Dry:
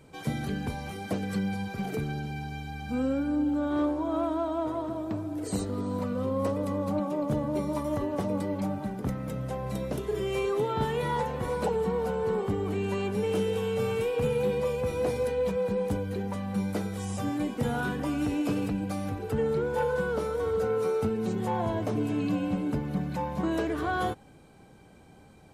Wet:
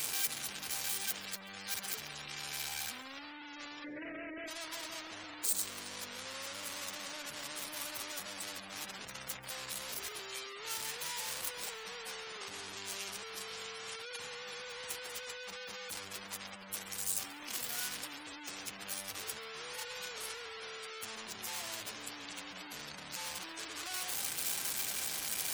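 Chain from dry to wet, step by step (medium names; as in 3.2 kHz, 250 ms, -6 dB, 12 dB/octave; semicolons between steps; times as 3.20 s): one-bit comparator; 3.84–4.48 s: ten-band graphic EQ 125 Hz +7 dB, 250 Hz +7 dB, 500 Hz +10 dB, 1 kHz -11 dB, 2 kHz +8 dB, 4 kHz -10 dB; spectral gate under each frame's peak -30 dB strong; pre-emphasis filter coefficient 0.97; on a send: thinning echo 137 ms, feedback 28%, level -21.5 dB; on the sum: trim +2 dB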